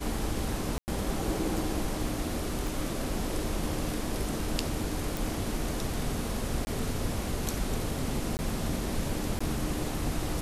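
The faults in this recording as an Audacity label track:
0.780000	0.880000	gap 99 ms
2.670000	2.670000	pop
5.170000	5.170000	pop
6.650000	6.670000	gap 20 ms
8.370000	8.390000	gap 19 ms
9.390000	9.400000	gap 15 ms

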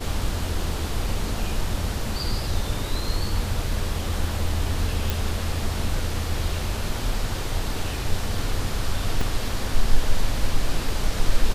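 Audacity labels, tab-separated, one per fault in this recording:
5.100000	5.100000	pop
9.210000	9.210000	gap 3.3 ms

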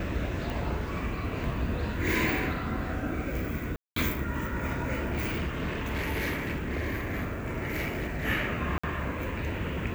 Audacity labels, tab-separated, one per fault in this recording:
0.500000	0.500000	pop
3.760000	3.960000	gap 0.203 s
5.110000	8.260000	clipped -27 dBFS
8.780000	8.840000	gap 55 ms

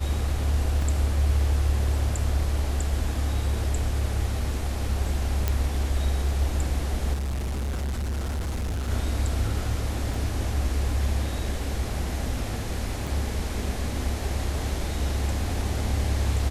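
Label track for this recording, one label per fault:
0.820000	0.820000	gap 2.5 ms
5.480000	5.480000	pop -10 dBFS
7.130000	8.900000	clipped -25.5 dBFS
10.140000	10.140000	gap 2.5 ms
13.070000	13.070000	gap 4.2 ms

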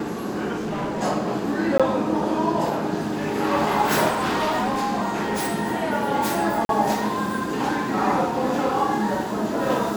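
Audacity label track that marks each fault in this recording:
0.580000	1.030000	clipped -23.5 dBFS
1.780000	1.800000	gap 16 ms
4.090000	5.530000	clipped -19 dBFS
6.650000	6.690000	gap 42 ms

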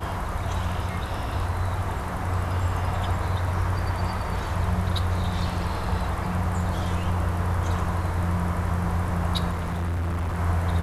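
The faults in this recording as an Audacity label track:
9.510000	10.390000	clipped -24 dBFS

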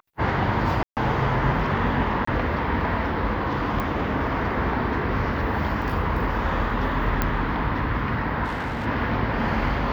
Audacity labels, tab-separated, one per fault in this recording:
0.830000	0.970000	gap 0.138 s
2.250000	2.270000	gap 24 ms
3.800000	3.800000	pop -15 dBFS
5.820000	5.820000	gap 2.2 ms
7.220000	7.220000	pop -8 dBFS
8.440000	8.870000	clipped -24 dBFS

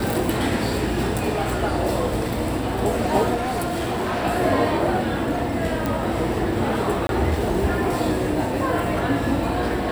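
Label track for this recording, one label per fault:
3.340000	4.250000	clipped -21 dBFS
5.860000	5.860000	pop
7.070000	7.090000	gap 22 ms

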